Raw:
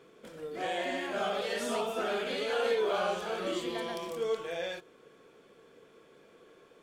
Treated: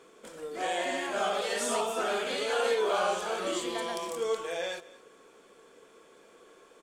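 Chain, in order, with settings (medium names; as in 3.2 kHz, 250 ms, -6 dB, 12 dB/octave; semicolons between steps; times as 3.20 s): ten-band graphic EQ 125 Hz -10 dB, 1 kHz +4 dB, 8 kHz +10 dB; delay 223 ms -20 dB; trim +1 dB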